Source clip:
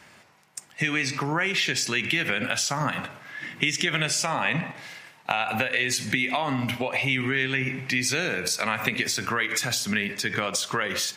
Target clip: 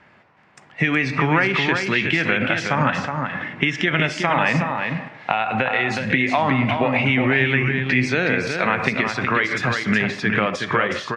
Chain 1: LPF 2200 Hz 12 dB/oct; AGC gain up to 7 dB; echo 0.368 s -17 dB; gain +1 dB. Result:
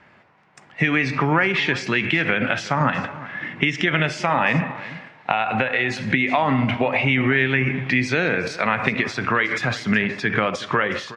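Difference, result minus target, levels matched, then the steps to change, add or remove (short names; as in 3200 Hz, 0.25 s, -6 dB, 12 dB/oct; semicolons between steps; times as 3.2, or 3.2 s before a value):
echo-to-direct -11.5 dB
change: echo 0.368 s -5.5 dB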